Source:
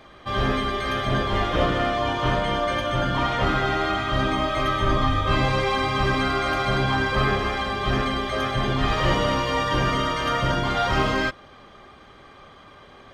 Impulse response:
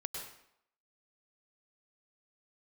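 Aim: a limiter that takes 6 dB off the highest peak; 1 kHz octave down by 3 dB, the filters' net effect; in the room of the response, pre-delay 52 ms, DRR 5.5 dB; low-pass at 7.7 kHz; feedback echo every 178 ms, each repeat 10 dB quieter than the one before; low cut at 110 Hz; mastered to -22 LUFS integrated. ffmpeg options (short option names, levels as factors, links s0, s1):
-filter_complex "[0:a]highpass=110,lowpass=7700,equalizer=f=1000:t=o:g=-4,alimiter=limit=0.141:level=0:latency=1,aecho=1:1:178|356|534|712:0.316|0.101|0.0324|0.0104,asplit=2[s0][s1];[1:a]atrim=start_sample=2205,adelay=52[s2];[s1][s2]afir=irnorm=-1:irlink=0,volume=0.531[s3];[s0][s3]amix=inputs=2:normalize=0,volume=1.41"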